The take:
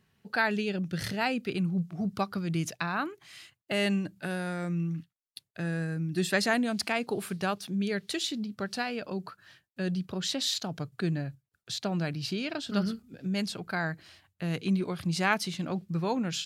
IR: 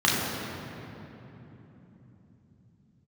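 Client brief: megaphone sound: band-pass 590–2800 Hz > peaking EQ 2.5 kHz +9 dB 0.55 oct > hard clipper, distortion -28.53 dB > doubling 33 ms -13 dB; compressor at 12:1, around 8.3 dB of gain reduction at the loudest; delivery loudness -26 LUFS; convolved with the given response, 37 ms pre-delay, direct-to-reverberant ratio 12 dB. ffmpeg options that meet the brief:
-filter_complex "[0:a]acompressor=threshold=0.0316:ratio=12,asplit=2[s0][s1];[1:a]atrim=start_sample=2205,adelay=37[s2];[s1][s2]afir=irnorm=-1:irlink=0,volume=0.0335[s3];[s0][s3]amix=inputs=2:normalize=0,highpass=590,lowpass=2800,equalizer=f=2500:t=o:w=0.55:g=9,asoftclip=type=hard:threshold=0.0891,asplit=2[s4][s5];[s5]adelay=33,volume=0.224[s6];[s4][s6]amix=inputs=2:normalize=0,volume=4.22"

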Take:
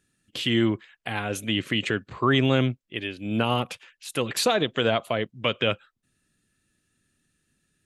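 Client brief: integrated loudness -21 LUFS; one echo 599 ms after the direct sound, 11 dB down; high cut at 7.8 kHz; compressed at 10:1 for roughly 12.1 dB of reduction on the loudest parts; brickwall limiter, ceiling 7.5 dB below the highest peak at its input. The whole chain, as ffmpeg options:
-af "lowpass=7800,acompressor=threshold=0.0355:ratio=10,alimiter=limit=0.075:level=0:latency=1,aecho=1:1:599:0.282,volume=5.62"

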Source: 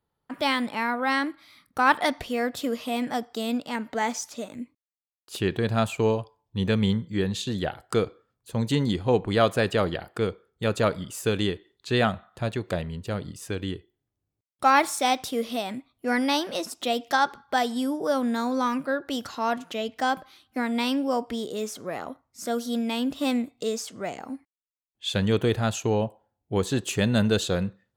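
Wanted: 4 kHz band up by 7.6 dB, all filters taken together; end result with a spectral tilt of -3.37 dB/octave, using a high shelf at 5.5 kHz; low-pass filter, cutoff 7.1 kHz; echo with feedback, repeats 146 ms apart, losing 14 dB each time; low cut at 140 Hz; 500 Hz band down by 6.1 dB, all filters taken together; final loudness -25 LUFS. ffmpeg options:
-af "highpass=140,lowpass=7100,equalizer=f=500:t=o:g=-7.5,equalizer=f=4000:t=o:g=8.5,highshelf=f=5500:g=3.5,aecho=1:1:146|292:0.2|0.0399,volume=1.19"

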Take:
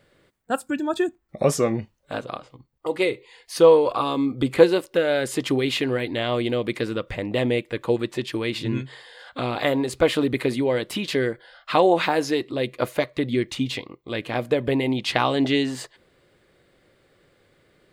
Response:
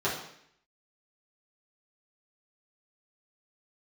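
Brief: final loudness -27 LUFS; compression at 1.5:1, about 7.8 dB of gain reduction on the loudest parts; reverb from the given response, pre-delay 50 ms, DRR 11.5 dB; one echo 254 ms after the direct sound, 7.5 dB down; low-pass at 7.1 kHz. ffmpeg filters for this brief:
-filter_complex "[0:a]lowpass=7100,acompressor=threshold=0.0282:ratio=1.5,aecho=1:1:254:0.422,asplit=2[s0][s1];[1:a]atrim=start_sample=2205,adelay=50[s2];[s1][s2]afir=irnorm=-1:irlink=0,volume=0.075[s3];[s0][s3]amix=inputs=2:normalize=0,volume=1.06"

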